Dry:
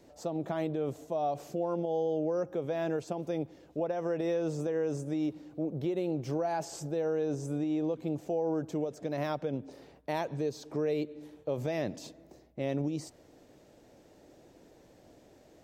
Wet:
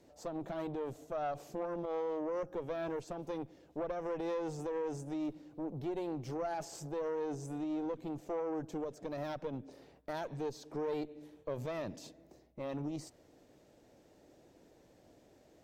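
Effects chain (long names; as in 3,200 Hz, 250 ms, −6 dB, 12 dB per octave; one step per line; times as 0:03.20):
tube saturation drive 28 dB, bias 0.65
level −1.5 dB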